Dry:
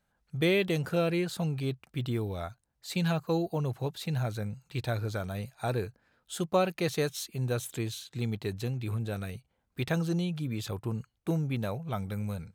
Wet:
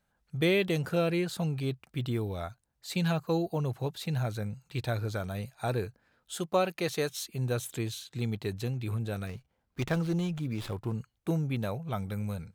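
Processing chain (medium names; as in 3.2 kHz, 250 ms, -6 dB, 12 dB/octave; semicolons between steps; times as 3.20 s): 6.36–7.12 s: bass shelf 150 Hz -9 dB; 9.27–10.95 s: sliding maximum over 5 samples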